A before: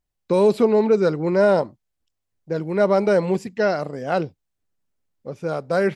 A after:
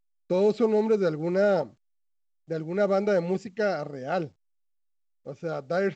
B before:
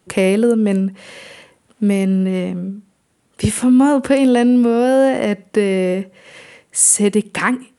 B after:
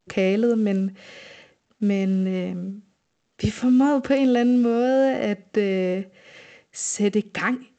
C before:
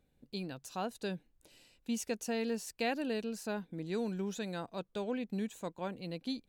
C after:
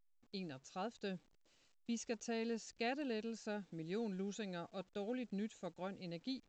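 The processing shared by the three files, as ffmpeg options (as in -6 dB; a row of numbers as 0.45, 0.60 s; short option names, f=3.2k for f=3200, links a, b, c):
-af "agate=range=-33dB:threshold=-47dB:ratio=3:detection=peak,asuperstop=centerf=1000:order=12:qfactor=6.1,volume=-6dB" -ar 16000 -c:a pcm_alaw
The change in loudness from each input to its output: -6.0, -6.5, -6.0 LU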